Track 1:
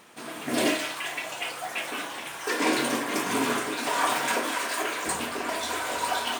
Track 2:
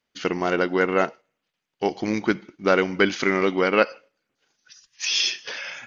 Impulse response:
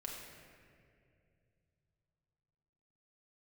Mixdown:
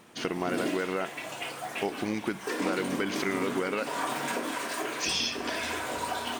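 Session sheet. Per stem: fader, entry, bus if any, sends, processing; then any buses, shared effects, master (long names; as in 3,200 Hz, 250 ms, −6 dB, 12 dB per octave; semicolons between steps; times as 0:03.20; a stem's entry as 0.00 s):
−4.5 dB, 0.00 s, no send, low-shelf EQ 380 Hz +10.5 dB
−1.0 dB, 0.00 s, no send, brickwall limiter −9 dBFS, peak gain reduction 7 dB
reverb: not used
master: downward compressor 2.5 to 1, threshold −29 dBFS, peak gain reduction 8.5 dB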